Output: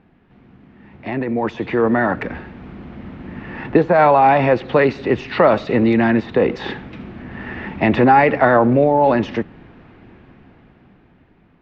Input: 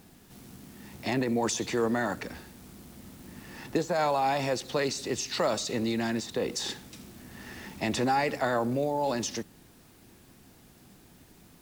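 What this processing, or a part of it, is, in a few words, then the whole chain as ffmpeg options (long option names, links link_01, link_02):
action camera in a waterproof case: -af "lowpass=frequency=2500:width=0.5412,lowpass=frequency=2500:width=1.3066,dynaudnorm=framelen=270:gausssize=13:maxgain=15dB,volume=1.5dB" -ar 48000 -c:a aac -b:a 128k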